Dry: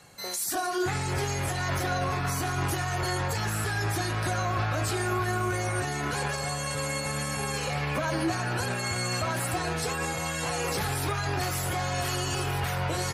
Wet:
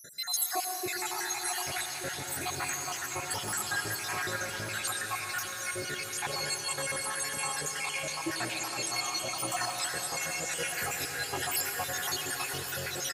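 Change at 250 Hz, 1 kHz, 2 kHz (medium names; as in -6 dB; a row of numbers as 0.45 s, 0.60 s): -10.5 dB, -6.0 dB, -2.5 dB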